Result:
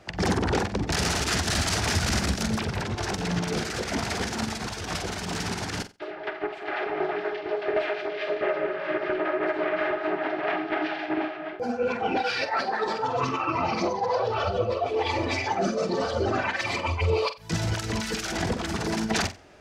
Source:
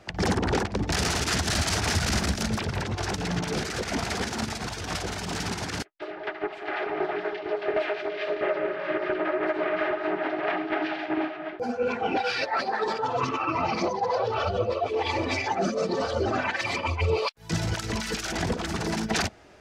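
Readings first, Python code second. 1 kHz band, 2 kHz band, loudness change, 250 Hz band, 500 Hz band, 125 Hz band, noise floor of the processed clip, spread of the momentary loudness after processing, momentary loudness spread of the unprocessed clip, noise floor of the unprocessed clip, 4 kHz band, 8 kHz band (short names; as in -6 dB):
+0.5 dB, +0.5 dB, +0.5 dB, +0.5 dB, +0.5 dB, +0.5 dB, -38 dBFS, 6 LU, 6 LU, -39 dBFS, +0.5 dB, +0.5 dB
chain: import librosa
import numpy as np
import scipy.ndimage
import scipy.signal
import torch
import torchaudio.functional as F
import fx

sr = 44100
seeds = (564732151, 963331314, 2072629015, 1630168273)

y = fx.room_flutter(x, sr, wall_m=7.8, rt60_s=0.25)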